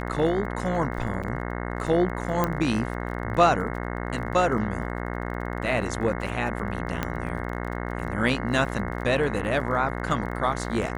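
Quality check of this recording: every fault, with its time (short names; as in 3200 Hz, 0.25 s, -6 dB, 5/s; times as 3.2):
buzz 60 Hz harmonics 36 -31 dBFS
crackle 25/s -35 dBFS
1.23–1.24 gap 5.8 ms
2.44 pop -10 dBFS
7.03 pop -11 dBFS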